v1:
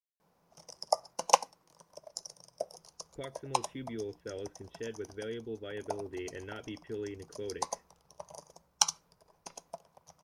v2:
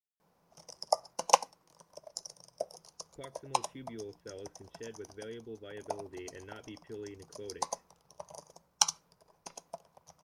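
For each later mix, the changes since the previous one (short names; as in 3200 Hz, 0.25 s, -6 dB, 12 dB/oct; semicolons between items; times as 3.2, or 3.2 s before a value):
speech -5.0 dB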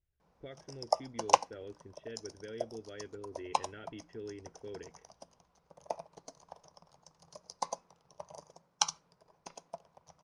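speech: entry -2.75 s; master: add air absorption 69 m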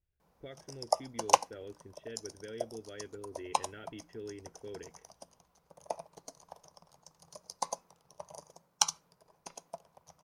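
background: add bell 5400 Hz -2.5 dB 0.3 oct; master: remove air absorption 69 m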